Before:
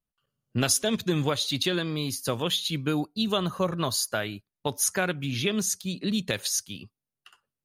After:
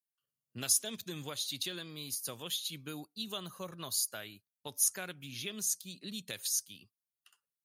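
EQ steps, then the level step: HPF 82 Hz; pre-emphasis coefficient 0.8; -3.5 dB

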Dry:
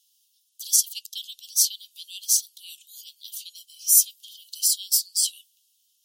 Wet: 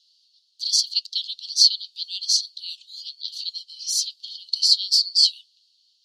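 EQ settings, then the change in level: synth low-pass 4400 Hz, resonance Q 11; -2.5 dB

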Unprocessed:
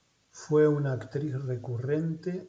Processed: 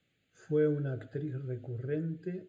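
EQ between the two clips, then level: low shelf 69 Hz -9 dB; high shelf 6000 Hz -5.5 dB; fixed phaser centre 2400 Hz, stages 4; -3.0 dB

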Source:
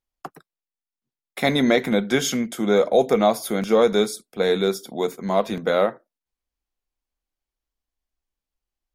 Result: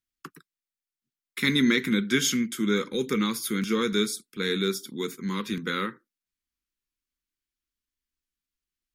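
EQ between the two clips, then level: Butterworth band-stop 670 Hz, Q 0.68; low shelf 88 Hz -10.5 dB; 0.0 dB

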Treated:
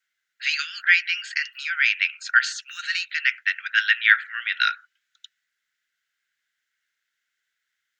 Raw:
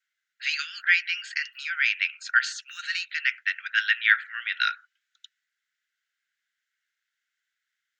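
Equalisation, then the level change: none; +3.5 dB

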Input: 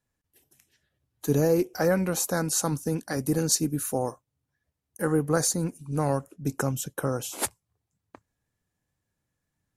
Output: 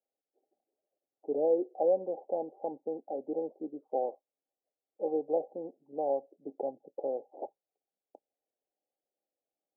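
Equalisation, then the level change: HPF 400 Hz 24 dB/oct; rippled Chebyshev low-pass 820 Hz, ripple 3 dB; 0.0 dB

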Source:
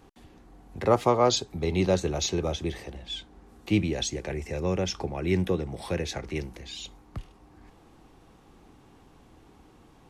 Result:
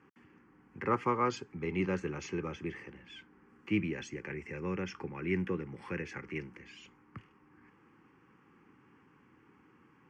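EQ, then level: Chebyshev band-pass 130–3000 Hz, order 2; low shelf 190 Hz -10.5 dB; fixed phaser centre 1600 Hz, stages 4; 0.0 dB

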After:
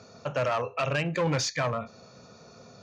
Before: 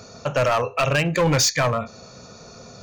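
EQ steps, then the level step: HPF 88 Hz; air absorption 78 m; -7.0 dB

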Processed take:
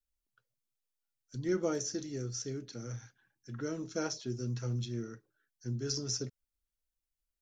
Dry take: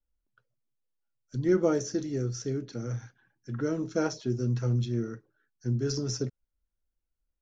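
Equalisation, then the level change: high shelf 2400 Hz +10.5 dB; -8.0 dB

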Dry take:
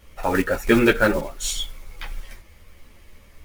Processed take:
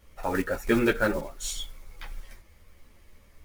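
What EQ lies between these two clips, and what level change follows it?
bell 2800 Hz -3 dB 0.77 oct; -6.5 dB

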